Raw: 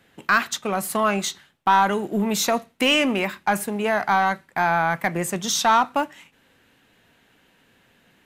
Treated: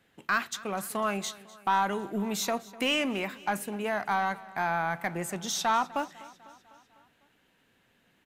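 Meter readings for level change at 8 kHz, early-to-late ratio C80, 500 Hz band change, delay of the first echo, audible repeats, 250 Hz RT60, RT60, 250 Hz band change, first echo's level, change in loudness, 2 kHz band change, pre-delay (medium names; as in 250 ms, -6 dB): -8.5 dB, no reverb, -8.5 dB, 250 ms, 4, no reverb, no reverb, -8.5 dB, -20.0 dB, -8.5 dB, -8.5 dB, no reverb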